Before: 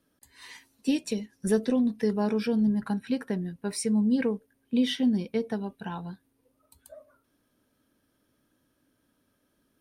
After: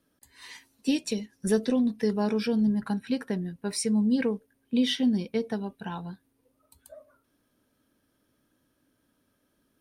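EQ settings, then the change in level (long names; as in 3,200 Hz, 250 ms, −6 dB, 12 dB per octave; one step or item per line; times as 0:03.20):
dynamic equaliser 4,700 Hz, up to +4 dB, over −49 dBFS, Q 0.79
0.0 dB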